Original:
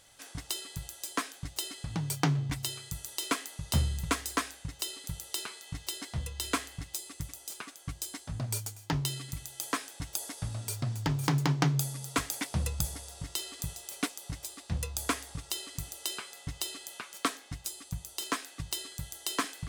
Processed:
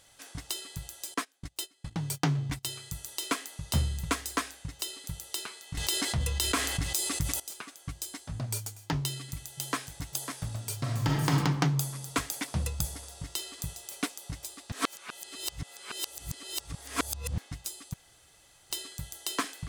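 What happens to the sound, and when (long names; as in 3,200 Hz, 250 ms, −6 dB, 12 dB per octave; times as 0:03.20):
0:01.14–0:02.69: noise gate −38 dBFS, range −22 dB
0:05.77–0:07.40: envelope flattener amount 70%
0:09.02–0:10.01: delay throw 550 ms, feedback 60%, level −9 dB
0:10.79–0:11.29: thrown reverb, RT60 1.4 s, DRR −2 dB
0:14.72–0:17.38: reverse
0:17.94–0:18.70: fill with room tone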